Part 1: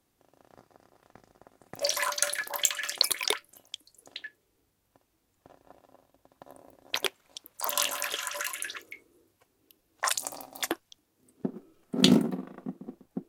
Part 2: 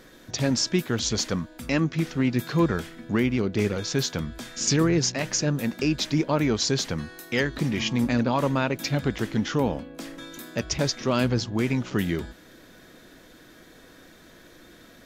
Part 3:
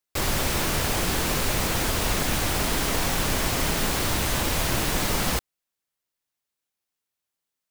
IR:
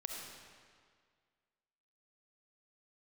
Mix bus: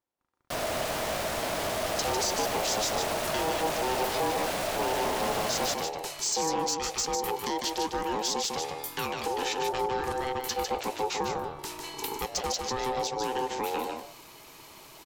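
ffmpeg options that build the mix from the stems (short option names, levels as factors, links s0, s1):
-filter_complex "[0:a]volume=0.211[s0];[1:a]acrossover=split=240[s1][s2];[s2]acompressor=threshold=0.0316:ratio=6[s3];[s1][s3]amix=inputs=2:normalize=0,crystalizer=i=3.5:c=0,adelay=1650,volume=0.944,asplit=2[s4][s5];[s5]volume=0.531[s6];[2:a]adelay=350,volume=0.75,asplit=2[s7][s8];[s8]volume=0.335[s9];[s6][s9]amix=inputs=2:normalize=0,aecho=0:1:151:1[s10];[s0][s4][s7][s10]amix=inputs=4:normalize=0,highshelf=f=7100:g=-5,asoftclip=type=tanh:threshold=0.112,aeval=exprs='val(0)*sin(2*PI*640*n/s)':c=same"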